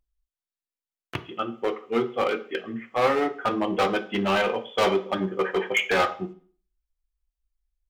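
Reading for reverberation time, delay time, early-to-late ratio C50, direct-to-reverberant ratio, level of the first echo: 0.45 s, no echo, 15.0 dB, 6.5 dB, no echo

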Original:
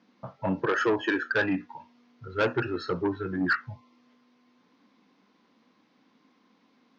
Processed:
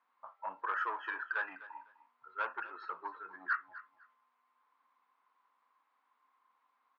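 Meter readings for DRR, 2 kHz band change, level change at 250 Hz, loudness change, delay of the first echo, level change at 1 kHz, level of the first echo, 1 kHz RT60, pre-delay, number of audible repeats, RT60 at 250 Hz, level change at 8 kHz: no reverb, -8.5 dB, -31.5 dB, -10.5 dB, 252 ms, -4.5 dB, -16.5 dB, no reverb, no reverb, 2, no reverb, no reading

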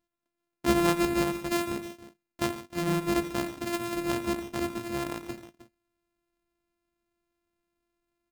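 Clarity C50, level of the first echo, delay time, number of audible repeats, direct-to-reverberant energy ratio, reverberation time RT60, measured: no reverb, -14.0 dB, 87 ms, 3, no reverb, no reverb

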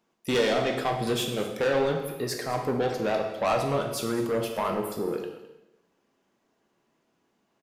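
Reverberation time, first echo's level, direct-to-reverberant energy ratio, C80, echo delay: 0.90 s, -16.0 dB, 2.0 dB, 7.5 dB, 212 ms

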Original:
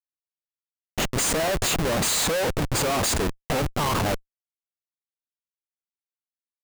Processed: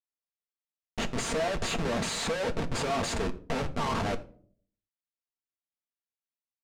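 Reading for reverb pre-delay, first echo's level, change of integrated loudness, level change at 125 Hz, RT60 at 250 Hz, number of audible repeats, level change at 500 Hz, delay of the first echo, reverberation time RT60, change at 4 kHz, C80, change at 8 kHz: 4 ms, no echo, -7.5 dB, -7.5 dB, 0.75 s, no echo, -5.5 dB, no echo, 0.50 s, -8.0 dB, 20.0 dB, -12.0 dB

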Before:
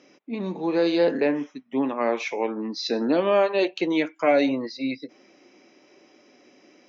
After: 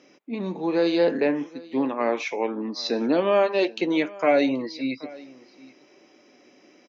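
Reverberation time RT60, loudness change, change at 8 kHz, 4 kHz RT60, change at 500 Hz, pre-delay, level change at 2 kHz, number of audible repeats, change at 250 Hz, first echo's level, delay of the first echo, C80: no reverb, 0.0 dB, no reading, no reverb, 0.0 dB, no reverb, 0.0 dB, 1, 0.0 dB, -21.5 dB, 779 ms, no reverb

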